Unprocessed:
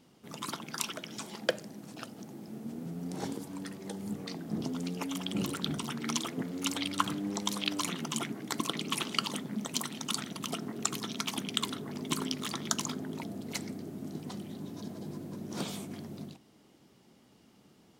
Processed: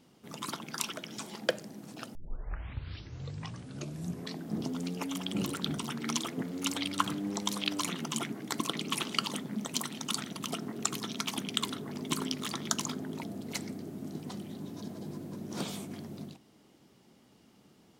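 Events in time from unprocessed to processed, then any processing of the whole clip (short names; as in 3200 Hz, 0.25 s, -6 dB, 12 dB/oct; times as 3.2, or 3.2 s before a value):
2.15 tape start 2.28 s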